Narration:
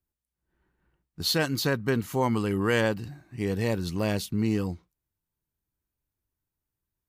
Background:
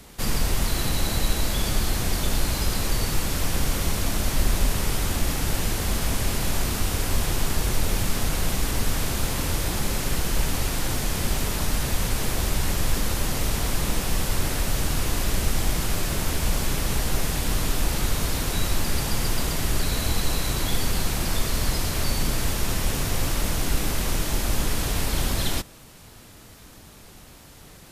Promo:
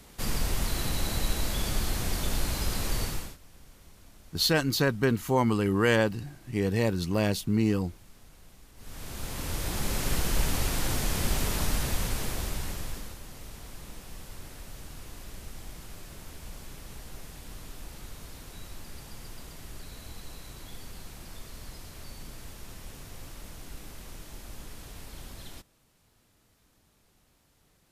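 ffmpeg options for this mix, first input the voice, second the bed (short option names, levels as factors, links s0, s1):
-filter_complex "[0:a]adelay=3150,volume=1.12[s0];[1:a]volume=11.2,afade=t=out:st=3.02:d=0.35:silence=0.0630957,afade=t=in:st=8.76:d=1.35:silence=0.0473151,afade=t=out:st=11.61:d=1.58:silence=0.149624[s1];[s0][s1]amix=inputs=2:normalize=0"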